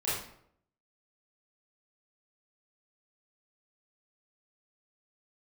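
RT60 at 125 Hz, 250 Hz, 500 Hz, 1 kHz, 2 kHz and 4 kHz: 0.75 s, 0.70 s, 0.75 s, 0.65 s, 0.55 s, 0.45 s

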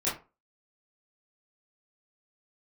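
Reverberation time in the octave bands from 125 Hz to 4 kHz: 0.30 s, 0.30 s, 0.30 s, 0.30 s, 0.25 s, 0.20 s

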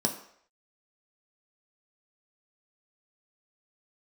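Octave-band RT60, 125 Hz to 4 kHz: 0.40 s, 0.50 s, 0.65 s, 0.65 s, 0.65 s, 0.60 s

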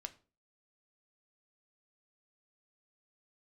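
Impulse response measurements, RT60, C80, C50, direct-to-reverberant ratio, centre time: 0.40 s, 22.5 dB, 17.5 dB, 7.0 dB, 4 ms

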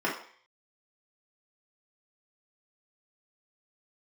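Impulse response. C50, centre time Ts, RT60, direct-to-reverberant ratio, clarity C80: 6.0 dB, 31 ms, 0.50 s, -6.0 dB, 11.0 dB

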